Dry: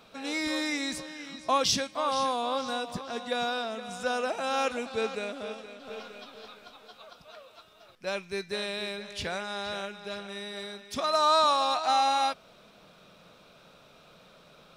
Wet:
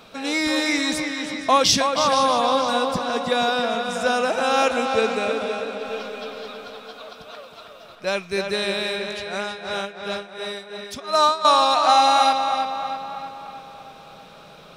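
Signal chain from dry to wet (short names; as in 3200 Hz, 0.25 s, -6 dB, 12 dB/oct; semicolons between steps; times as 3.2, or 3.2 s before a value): 9.07–11.45 tremolo 2.8 Hz, depth 91%; tape echo 0.319 s, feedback 59%, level -5 dB, low-pass 4100 Hz; gain +8.5 dB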